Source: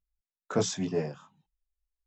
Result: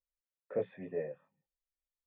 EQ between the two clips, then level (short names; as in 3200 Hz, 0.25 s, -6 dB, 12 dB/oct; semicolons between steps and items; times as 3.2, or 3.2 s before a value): vocal tract filter e; air absorption 91 m; +4.0 dB